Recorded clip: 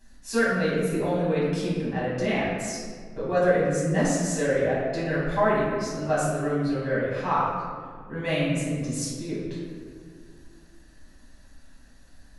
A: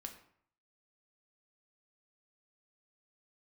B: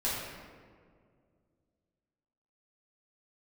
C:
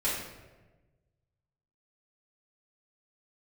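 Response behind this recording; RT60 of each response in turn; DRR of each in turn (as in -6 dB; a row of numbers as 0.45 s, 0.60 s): B; 0.60 s, 2.1 s, 1.2 s; 4.0 dB, -9.5 dB, -9.0 dB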